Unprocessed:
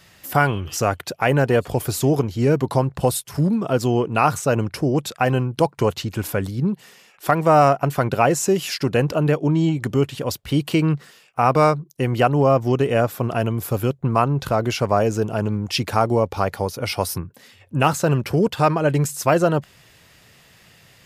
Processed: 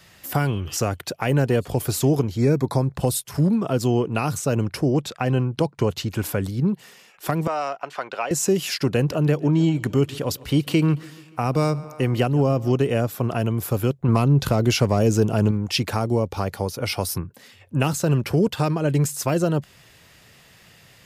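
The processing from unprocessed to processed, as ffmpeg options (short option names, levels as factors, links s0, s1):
-filter_complex "[0:a]asettb=1/sr,asplit=3[s0][s1][s2];[s0]atrim=end=2.374[s3];[s1]atrim=start=2.37:end=2.96,asetpts=PTS-STARTPTS,afade=t=in:d=0.004:c=qsin,afade=t=out:st=0.586:d=0.004:c=qsin,asuperstop=centerf=2900:order=20:qfactor=4.9[s4];[s2]atrim=start=2.956[s5];[s3][s4]acrossfade=d=0.004:c1=hsin:c2=qsin[s6];[s6][s5]acrossfade=d=0.004:c1=qsin:c2=hsin,asettb=1/sr,asplit=3[s7][s8][s9];[s7]atrim=end=4.974[s10];[s8]atrim=start=4.97:end=5.96,asetpts=PTS-STARTPTS,afade=t=in:d=0.004:c=qsin,afade=t=out:st=0.986:d=0.004:c=qsin,highshelf=f=8300:g=-11[s11];[s9]atrim=start=5.956[s12];[s10][s11]acrossfade=d=0.004:c1=hsin:c2=qsin[s13];[s13][s12]acrossfade=d=0.004:c1=qsin:c2=hsin,asettb=1/sr,asplit=3[s14][s15][s16];[s14]atrim=end=7.474[s17];[s15]atrim=start=7.47:end=8.31,asetpts=PTS-STARTPTS,afade=t=in:d=0.004:c=qsin,afade=t=out:st=0.836:d=0.004:c=qsin,highpass=730,lowpass=4300[s18];[s16]atrim=start=8.306[s19];[s17][s18]acrossfade=d=0.004:c1=hsin:c2=qsin[s20];[s20][s19]acrossfade=d=0.004:c1=qsin:c2=hsin,asettb=1/sr,asplit=3[s21][s22][s23];[s21]atrim=end=8.974[s24];[s22]atrim=start=8.97:end=12.77,asetpts=PTS-STARTPTS,afade=t=in:d=0.004:c=qsin,afade=t=out:st=3.796:d=0.004:c=qsin,aecho=1:1:144|288|432|576:0.075|0.0442|0.0261|0.0154,atrim=end_sample=167580[s25];[s23]atrim=start=12.766[s26];[s24][s25]acrossfade=d=0.004:c1=hsin:c2=qsin[s27];[s27][s26]acrossfade=d=0.004:c1=qsin:c2=hsin,asettb=1/sr,asplit=3[s28][s29][s30];[s28]atrim=end=14.084[s31];[s29]atrim=start=14.08:end=15.51,asetpts=PTS-STARTPTS,afade=t=in:d=0.004:c=qsin,afade=t=out:st=1.426:d=0.004:c=qsin,acontrast=27[s32];[s30]atrim=start=15.506[s33];[s31][s32]acrossfade=d=0.004:c1=hsin:c2=qsin[s34];[s34][s33]acrossfade=d=0.004:c1=qsin:c2=hsin,acrossover=split=410|3000[s35][s36][s37];[s36]acompressor=threshold=0.0501:ratio=6[s38];[s35][s38][s37]amix=inputs=3:normalize=0"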